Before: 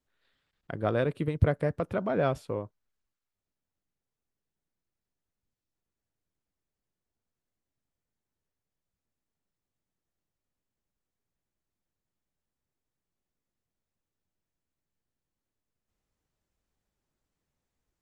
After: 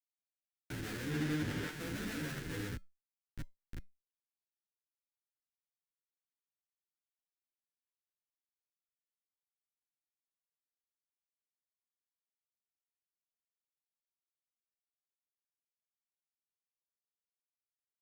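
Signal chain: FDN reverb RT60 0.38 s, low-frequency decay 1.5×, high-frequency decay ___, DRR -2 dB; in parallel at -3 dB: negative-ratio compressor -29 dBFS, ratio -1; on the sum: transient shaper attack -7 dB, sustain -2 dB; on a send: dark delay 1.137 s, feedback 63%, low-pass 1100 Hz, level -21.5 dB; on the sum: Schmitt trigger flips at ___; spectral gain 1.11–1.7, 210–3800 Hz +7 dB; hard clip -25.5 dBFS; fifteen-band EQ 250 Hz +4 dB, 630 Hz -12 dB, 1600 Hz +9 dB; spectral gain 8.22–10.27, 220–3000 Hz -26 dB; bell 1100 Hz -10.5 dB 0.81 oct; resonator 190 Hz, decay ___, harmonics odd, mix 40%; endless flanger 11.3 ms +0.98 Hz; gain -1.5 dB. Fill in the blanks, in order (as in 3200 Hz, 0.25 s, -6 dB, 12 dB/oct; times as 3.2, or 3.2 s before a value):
0.75×, -32 dBFS, 0.22 s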